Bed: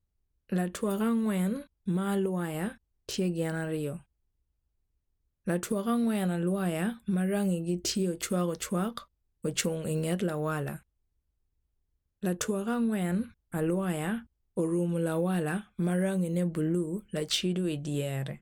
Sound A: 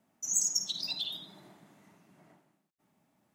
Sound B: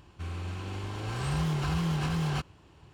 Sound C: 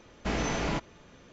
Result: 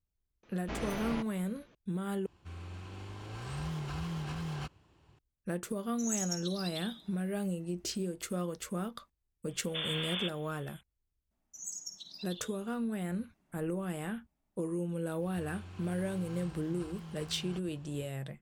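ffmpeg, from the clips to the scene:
-filter_complex "[3:a]asplit=2[a][b];[2:a]asplit=2[c][d];[1:a]asplit=2[e][f];[0:a]volume=-6.5dB[g];[a]lowpass=5.2k[h];[b]lowpass=f=3.1k:t=q:w=0.5098,lowpass=f=3.1k:t=q:w=0.6013,lowpass=f=3.1k:t=q:w=0.9,lowpass=f=3.1k:t=q:w=2.563,afreqshift=-3600[i];[d]acompressor=threshold=-43dB:ratio=6:attack=3.2:release=140:knee=1:detection=peak[j];[g]asplit=2[k][l];[k]atrim=end=2.264[m];[c]atrim=end=2.93,asetpts=PTS-STARTPTS,volume=-8.5dB[n];[l]atrim=start=5.186[o];[h]atrim=end=1.32,asetpts=PTS-STARTPTS,volume=-8dB,afade=t=in:d=0.004:c=hsin,afade=t=out:st=1.316:d=0.004:c=hsin,adelay=430[p];[e]atrim=end=3.34,asetpts=PTS-STARTPTS,volume=-7.5dB,afade=t=in:d=0.004:c=hsin,afade=t=out:st=3.336:d=0.004:c=hsin,adelay=5760[q];[i]atrim=end=1.32,asetpts=PTS-STARTPTS,volume=-7dB,afade=t=in:d=0.004:c=hsin,afade=t=out:st=1.316:d=0.004:c=hsin,adelay=9490[r];[f]atrim=end=3.34,asetpts=PTS-STARTPTS,volume=-13dB,afade=t=in:d=0.004:c=hsin,afade=t=out:st=3.336:d=0.004:c=hsin,adelay=11310[s];[j]atrim=end=2.93,asetpts=PTS-STARTPTS,volume=-2dB,afade=t=in:d=0.05,afade=t=out:st=2.88:d=0.05,adelay=15180[t];[m][n]acrossfade=d=0.004:c1=hsin:c2=hsin[u];[u][o]acrossfade=d=0.004:c1=hsin:c2=hsin[v];[v][p][q][r][s][t]amix=inputs=6:normalize=0"

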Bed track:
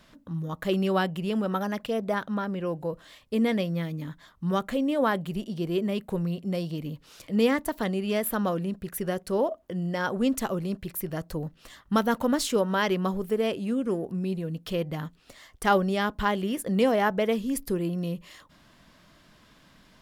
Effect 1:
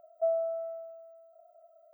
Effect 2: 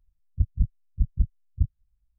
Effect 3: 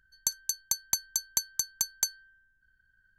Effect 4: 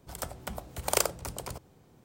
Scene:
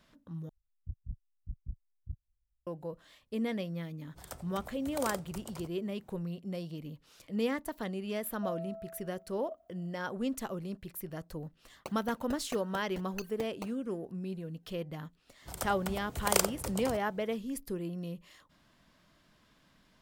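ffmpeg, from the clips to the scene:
-filter_complex "[4:a]asplit=2[a][b];[0:a]volume=-9dB[c];[2:a]acompressor=threshold=-38dB:ratio=1.5:attack=47:release=62:knee=1:detection=rms[d];[a]alimiter=limit=-13dB:level=0:latency=1:release=12[e];[3:a]acrusher=samples=22:mix=1:aa=0.000001:lfo=1:lforange=35.2:lforate=1.7[f];[c]asplit=2[g][h];[g]atrim=end=0.494[i];[d]atrim=end=2.18,asetpts=PTS-STARTPTS,volume=-11.5dB[j];[h]atrim=start=2.666[k];[e]atrim=end=2.04,asetpts=PTS-STARTPTS,volume=-8.5dB,afade=t=in:d=0.004:c=hsin,afade=t=out:st=2.036:d=0.004:c=hsin,adelay=180369S[l];[1:a]atrim=end=1.93,asetpts=PTS-STARTPTS,volume=-11dB,afade=t=in:d=0.004:c=hsin,afade=t=out:st=1.926:d=0.004:c=hsin,adelay=8210[m];[f]atrim=end=3.18,asetpts=PTS-STARTPTS,volume=-14.5dB,afade=t=in:d=0.004:c=hsin,afade=t=out:st=3.176:d=0.004:c=hsin,adelay=11590[n];[b]atrim=end=2.04,asetpts=PTS-STARTPTS,volume=-1dB,afade=t=in:d=0.1,afade=t=out:st=1.94:d=0.1,adelay=15390[o];[i][j]acrossfade=d=0.004:c1=hsin:c2=hsin[p];[p][k]acrossfade=d=0.004:c1=hsin:c2=hsin[q];[q][l][m][n][o]amix=inputs=5:normalize=0"

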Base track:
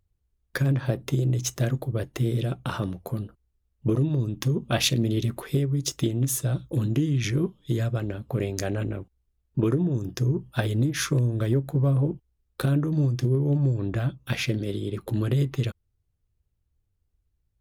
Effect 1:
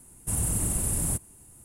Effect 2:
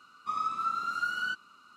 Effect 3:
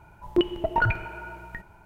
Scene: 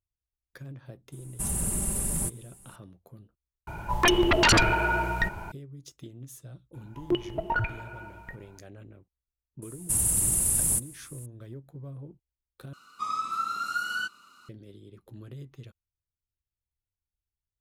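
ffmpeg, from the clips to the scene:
-filter_complex "[1:a]asplit=2[a][b];[3:a]asplit=2[c][d];[0:a]volume=-19.5dB[e];[a]aecho=1:1:5.1:0.53[f];[c]aeval=exprs='0.266*sin(PI/2*5.01*val(0)/0.266)':c=same[g];[b]highshelf=f=2.8k:g=10.5[h];[2:a]highshelf=f=5k:g=11.5[i];[e]asplit=3[j][k][l];[j]atrim=end=3.674[m];[g]atrim=end=1.85,asetpts=PTS-STARTPTS,volume=-4dB[n];[k]atrim=start=5.516:end=12.734[o];[i]atrim=end=1.76[p];[l]atrim=start=14.486[q];[f]atrim=end=1.64,asetpts=PTS-STARTPTS,volume=-2.5dB,afade=t=in:d=0.004:c=hsin,afade=t=out:st=1.636:d=0.004:c=hsin,adelay=1120[r];[d]atrim=end=1.85,asetpts=PTS-STARTPTS,volume=-5dB,afade=t=in:d=0.004:c=hsin,afade=t=out:st=1.846:d=0.004:c=hsin,adelay=297234S[s];[h]atrim=end=1.64,asetpts=PTS-STARTPTS,volume=-5dB,afade=t=in:d=0.004:c=hsin,afade=t=out:st=1.636:d=0.004:c=hsin,adelay=424242S[t];[m][n]acrossfade=d=0.004:c1=hsin:c2=hsin[u];[u][o]acrossfade=d=0.004:c1=hsin:c2=hsin[v];[v][p]acrossfade=d=0.004:c1=hsin:c2=hsin[w];[w][q]acrossfade=d=0.004:c1=hsin:c2=hsin[x];[x][r][s][t]amix=inputs=4:normalize=0"

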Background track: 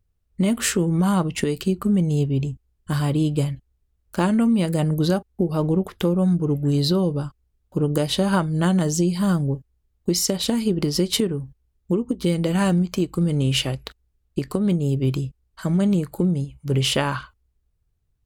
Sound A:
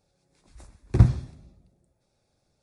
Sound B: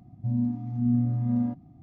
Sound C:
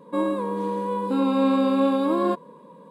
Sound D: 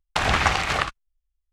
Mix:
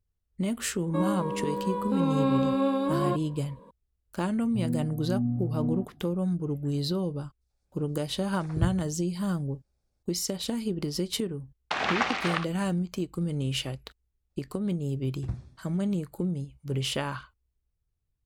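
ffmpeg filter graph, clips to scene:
-filter_complex "[1:a]asplit=2[a][b];[0:a]volume=-9dB[c];[2:a]lowpass=1.1k[d];[a]acrossover=split=590|3200[e][f][g];[f]adelay=90[h];[e]adelay=210[i];[i][h][g]amix=inputs=3:normalize=0[j];[4:a]acrossover=split=180 6200:gain=0.0631 1 0.141[k][l][m];[k][l][m]amix=inputs=3:normalize=0[n];[3:a]atrim=end=2.9,asetpts=PTS-STARTPTS,volume=-5dB,afade=t=in:d=0.004:c=hsin,afade=t=out:st=2.896:d=0.004:c=hsin,adelay=810[o];[d]atrim=end=1.82,asetpts=PTS-STARTPTS,volume=-4.5dB,afade=t=in:d=0.004:c=hsin,afade=t=out:st=1.816:d=0.004:c=hsin,adelay=4310[p];[j]atrim=end=2.62,asetpts=PTS-STARTPTS,volume=-10.5dB,afade=t=in:d=0.004:c=hsin,afade=t=out:st=2.616:d=0.004:c=hsin,adelay=7410[q];[n]atrim=end=1.52,asetpts=PTS-STARTPTS,volume=-6dB,afade=t=in:d=0.004:c=hsin,afade=t=out:st=1.516:d=0.004:c=hsin,adelay=11550[r];[b]atrim=end=2.62,asetpts=PTS-STARTPTS,volume=-17.5dB,afade=t=in:d=0.02,afade=t=out:st=2.6:d=0.02,adelay=14290[s];[c][o][p][q][r][s]amix=inputs=6:normalize=0"

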